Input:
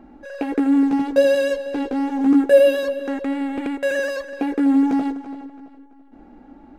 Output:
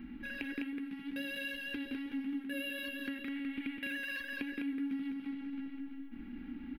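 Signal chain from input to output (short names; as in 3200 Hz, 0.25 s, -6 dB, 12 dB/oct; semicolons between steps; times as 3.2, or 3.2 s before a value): EQ curve 150 Hz 0 dB, 230 Hz +5 dB, 630 Hz -23 dB, 2100 Hz +8 dB, 3100 Hz +9 dB, 7400 Hz -18 dB, 11000 Hz +7 dB; compressor 6:1, threshold -38 dBFS, peak gain reduction 23.5 dB; on a send: echo 0.204 s -4 dB; on the sum: gain -1.5 dB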